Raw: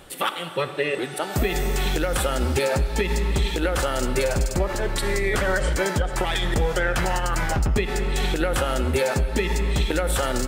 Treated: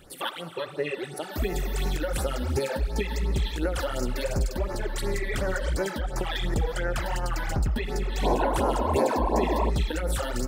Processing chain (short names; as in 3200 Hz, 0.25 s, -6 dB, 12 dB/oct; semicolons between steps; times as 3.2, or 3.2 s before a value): painted sound noise, 8.22–9.7, 210–1100 Hz -20 dBFS; phaser stages 12, 2.8 Hz, lowest notch 120–3300 Hz; gain -4 dB